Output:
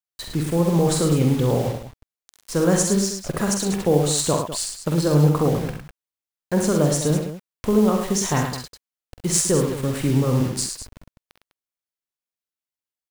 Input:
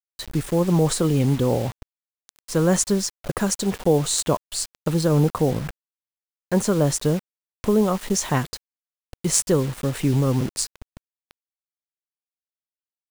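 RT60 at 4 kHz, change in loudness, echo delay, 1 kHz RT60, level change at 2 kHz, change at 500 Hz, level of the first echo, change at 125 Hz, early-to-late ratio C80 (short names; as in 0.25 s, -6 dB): none, +1.0 dB, 47 ms, none, +1.0 dB, +1.0 dB, -7.0 dB, +1.5 dB, none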